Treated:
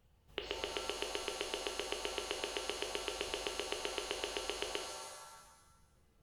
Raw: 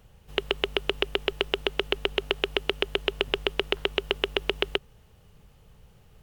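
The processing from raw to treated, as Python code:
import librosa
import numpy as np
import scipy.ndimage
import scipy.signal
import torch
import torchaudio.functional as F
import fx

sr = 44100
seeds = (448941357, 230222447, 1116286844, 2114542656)

y = fx.dereverb_blind(x, sr, rt60_s=1.4)
y = fx.comb_fb(y, sr, f0_hz=170.0, decay_s=0.78, harmonics='odd', damping=0.0, mix_pct=60)
y = fx.rev_shimmer(y, sr, seeds[0], rt60_s=1.2, semitones=7, shimmer_db=-2, drr_db=3.5)
y = F.gain(torch.from_numpy(y), -7.0).numpy()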